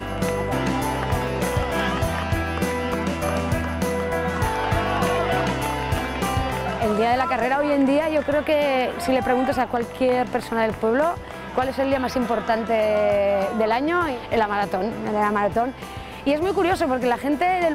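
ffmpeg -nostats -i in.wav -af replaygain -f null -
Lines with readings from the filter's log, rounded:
track_gain = +3.7 dB
track_peak = 0.254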